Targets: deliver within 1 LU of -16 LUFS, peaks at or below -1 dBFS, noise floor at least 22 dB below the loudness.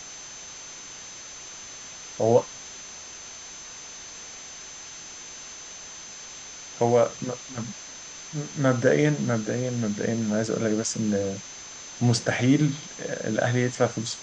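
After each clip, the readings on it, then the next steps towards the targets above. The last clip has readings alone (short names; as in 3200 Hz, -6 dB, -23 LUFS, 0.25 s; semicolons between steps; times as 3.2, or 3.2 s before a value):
steady tone 6200 Hz; tone level -41 dBFS; noise floor -42 dBFS; noise floor target -48 dBFS; loudness -25.5 LUFS; peak -7.0 dBFS; loudness target -16.0 LUFS
-> notch 6200 Hz, Q 30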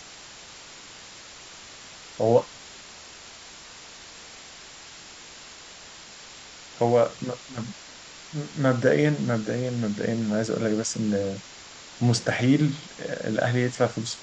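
steady tone none; noise floor -45 dBFS; noise floor target -48 dBFS
-> denoiser 6 dB, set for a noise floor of -45 dBFS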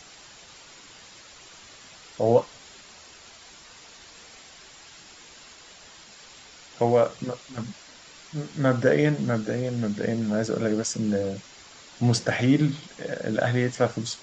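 noise floor -49 dBFS; loudness -25.5 LUFS; peak -7.0 dBFS; loudness target -16.0 LUFS
-> gain +9.5 dB; limiter -1 dBFS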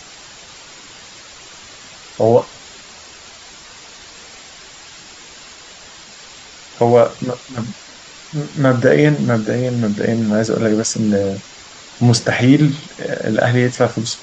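loudness -16.0 LUFS; peak -1.0 dBFS; noise floor -39 dBFS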